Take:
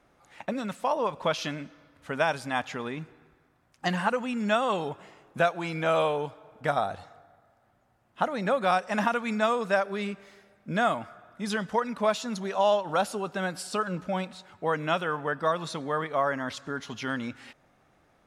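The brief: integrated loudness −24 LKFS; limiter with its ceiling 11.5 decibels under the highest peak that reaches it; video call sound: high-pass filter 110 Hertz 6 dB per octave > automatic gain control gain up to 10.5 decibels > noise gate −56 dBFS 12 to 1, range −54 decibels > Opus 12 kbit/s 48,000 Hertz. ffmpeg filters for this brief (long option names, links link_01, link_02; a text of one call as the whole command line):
ffmpeg -i in.wav -af "alimiter=limit=-21.5dB:level=0:latency=1,highpass=frequency=110:poles=1,dynaudnorm=maxgain=10.5dB,agate=range=-54dB:threshold=-56dB:ratio=12,volume=6dB" -ar 48000 -c:a libopus -b:a 12k out.opus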